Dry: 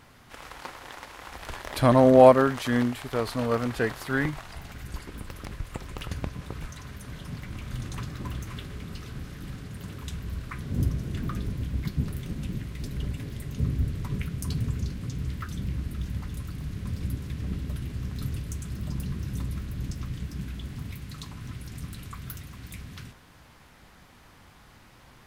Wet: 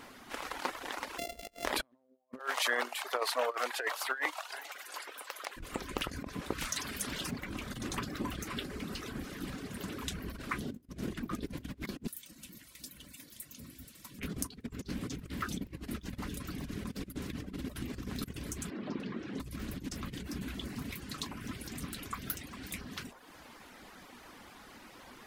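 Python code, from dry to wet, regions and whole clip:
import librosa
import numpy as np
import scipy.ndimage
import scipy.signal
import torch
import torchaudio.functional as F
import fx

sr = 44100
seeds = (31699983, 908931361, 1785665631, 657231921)

y = fx.chain(x, sr, fx.sample_sort(block=64),
    fx.band_shelf(hz=1200.0, db=-10.5, octaves=1.1),
    fx.over_compress(threshold_db=-45.0, ratio=-0.5), at=(1.18, 1.65))
y = fx.chain(y, sr, fx.highpass(hz=570.0, slope=24),
    fx.echo_single(ms=394, db=-22.0), at=(2.39, 5.57))
y = fx.chain(y, sr, fx.high_shelf(hz=2100.0, db=11.0),
    fx.doppler_dist(depth_ms=0.26), at=(6.58, 7.31))
y = fx.chain(y, sr, fx.pre_emphasis(coefficient=0.9),
    fx.notch_comb(f0_hz=410.0), at=(12.07, 14.19))
y = fx.chain(y, sr, fx.bandpass_edges(low_hz=290.0, high_hz=3100.0),
    fx.low_shelf(hz=410.0, db=5.5),
    fx.doppler_dist(depth_ms=0.31), at=(18.7, 19.4))
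y = fx.over_compress(y, sr, threshold_db=-33.0, ratio=-0.5)
y = fx.dereverb_blind(y, sr, rt60_s=0.75)
y = fx.low_shelf_res(y, sr, hz=180.0, db=-10.0, q=1.5)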